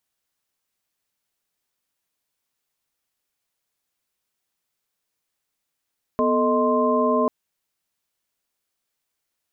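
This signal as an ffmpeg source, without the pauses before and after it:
ffmpeg -f lavfi -i "aevalsrc='0.075*(sin(2*PI*246.94*t)+sin(2*PI*440*t)+sin(2*PI*622.25*t)+sin(2*PI*1046.5*t))':duration=1.09:sample_rate=44100" out.wav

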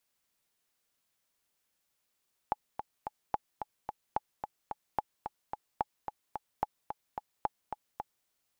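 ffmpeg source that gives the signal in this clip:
ffmpeg -f lavfi -i "aevalsrc='pow(10,(-15.5-7.5*gte(mod(t,3*60/219),60/219))/20)*sin(2*PI*846*mod(t,60/219))*exp(-6.91*mod(t,60/219)/0.03)':duration=5.75:sample_rate=44100" out.wav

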